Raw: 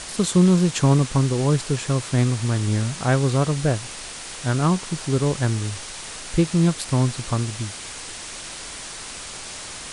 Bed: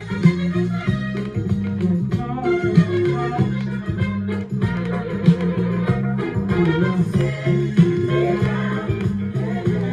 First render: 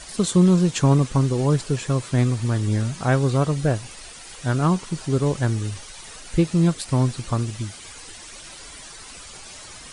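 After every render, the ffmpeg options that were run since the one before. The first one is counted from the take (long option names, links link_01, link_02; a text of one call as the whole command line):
ffmpeg -i in.wav -af "afftdn=noise_reduction=10:noise_floor=-36" out.wav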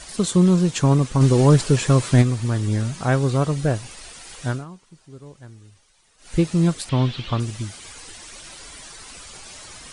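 ffmpeg -i in.wav -filter_complex "[0:a]asplit=3[link_01][link_02][link_03];[link_01]afade=type=out:start_time=1.2:duration=0.02[link_04];[link_02]acontrast=69,afade=type=in:start_time=1.2:duration=0.02,afade=type=out:start_time=2.21:duration=0.02[link_05];[link_03]afade=type=in:start_time=2.21:duration=0.02[link_06];[link_04][link_05][link_06]amix=inputs=3:normalize=0,asettb=1/sr,asplit=3[link_07][link_08][link_09];[link_07]atrim=end=6.894[link_10];[link_08]atrim=start=6.89:end=7.4,asetpts=PTS-STARTPTS,afade=type=in:duration=0.004:curve=qsin,afade=type=out:start_time=0.506:duration=0.004:curve=qsin,lowpass=frequency=3300:width_type=q:width=4[link_11];[link_09]atrim=start=7.396[link_12];[link_10][link_11]acrossfade=duration=0.004:curve1=hsin:curve2=qsin[link_13];[link_13][link_12]acrossfade=duration=0.004:curve1=qsin:curve2=hsin,asplit=3[link_14][link_15][link_16];[link_14]atrim=end=4.65,asetpts=PTS-STARTPTS,afade=type=out:start_time=4.46:duration=0.19:silence=0.0944061[link_17];[link_15]atrim=start=4.65:end=6.18,asetpts=PTS-STARTPTS,volume=-20.5dB[link_18];[link_16]atrim=start=6.18,asetpts=PTS-STARTPTS,afade=type=in:duration=0.19:silence=0.0944061[link_19];[link_17][link_18][link_19]concat=n=3:v=0:a=1" out.wav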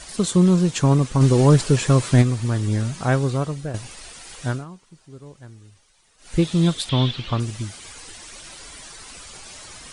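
ffmpeg -i in.wav -filter_complex "[0:a]asettb=1/sr,asplit=3[link_01][link_02][link_03];[link_01]atrim=end=6.424[link_04];[link_02]atrim=start=6.42:end=7.11,asetpts=PTS-STARTPTS,afade=type=in:duration=0.004:curve=qsin,afade=type=out:start_time=0.686:duration=0.004:curve=qsin,equalizer=frequency=3500:width_type=o:width=0.36:gain=13.5[link_05];[link_03]atrim=start=7.106[link_06];[link_04][link_05]acrossfade=duration=0.004:curve1=hsin:curve2=qsin[link_07];[link_07][link_06]acrossfade=duration=0.004:curve1=qsin:curve2=hsin,asplit=2[link_08][link_09];[link_08]atrim=end=3.74,asetpts=PTS-STARTPTS,afade=type=out:start_time=3.13:duration=0.61:silence=0.281838[link_10];[link_09]atrim=start=3.74,asetpts=PTS-STARTPTS,afade=type=in:duration=0.004:curve=hsin:silence=0.281838[link_11];[link_10][link_11]concat=n=2:v=0:a=1" out.wav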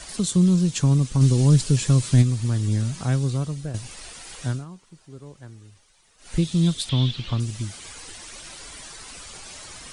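ffmpeg -i in.wav -filter_complex "[0:a]acrossover=split=250|3000[link_01][link_02][link_03];[link_02]acompressor=threshold=-42dB:ratio=2[link_04];[link_01][link_04][link_03]amix=inputs=3:normalize=0" out.wav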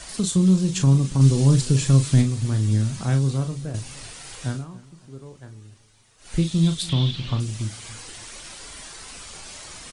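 ffmpeg -i in.wav -filter_complex "[0:a]asplit=2[link_01][link_02];[link_02]adelay=37,volume=-8dB[link_03];[link_01][link_03]amix=inputs=2:normalize=0,asplit=2[link_04][link_05];[link_05]adelay=283,lowpass=frequency=1700:poles=1,volume=-19dB,asplit=2[link_06][link_07];[link_07]adelay=283,lowpass=frequency=1700:poles=1,volume=0.38,asplit=2[link_08][link_09];[link_09]adelay=283,lowpass=frequency=1700:poles=1,volume=0.38[link_10];[link_04][link_06][link_08][link_10]amix=inputs=4:normalize=0" out.wav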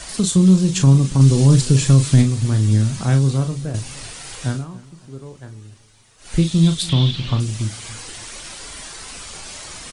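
ffmpeg -i in.wav -af "volume=5dB,alimiter=limit=-3dB:level=0:latency=1" out.wav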